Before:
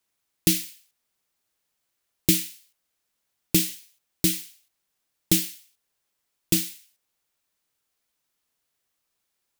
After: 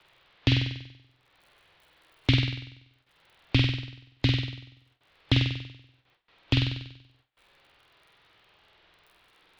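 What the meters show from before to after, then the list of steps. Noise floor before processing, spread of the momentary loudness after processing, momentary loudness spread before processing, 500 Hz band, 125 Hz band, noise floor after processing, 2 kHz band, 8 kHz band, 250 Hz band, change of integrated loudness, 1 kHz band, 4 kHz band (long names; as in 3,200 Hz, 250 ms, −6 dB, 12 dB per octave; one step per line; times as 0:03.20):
−79 dBFS, 18 LU, 12 LU, −3.0 dB, +8.5 dB, −68 dBFS, +5.5 dB, below −25 dB, −2.5 dB, −3.5 dB, +9.5 dB, +1.5 dB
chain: in parallel at +2.5 dB: downward compressor 6 to 1, threshold −28 dBFS, peak gain reduction 13 dB
on the sum: parametric band 290 Hz −12 dB 0.31 octaves
frequency shifter −55 Hz
Butterworth low-pass 3,800 Hz 36 dB per octave
surface crackle 23 per second −64 dBFS
low-shelf EQ 62 Hz −3 dB
upward compression, threshold −39 dBFS
noise reduction from a noise print of the clip's start 7 dB
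on a send: flutter between parallel walls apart 8.2 metres, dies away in 0.79 s
on the sum: noise gate with hold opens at −53 dBFS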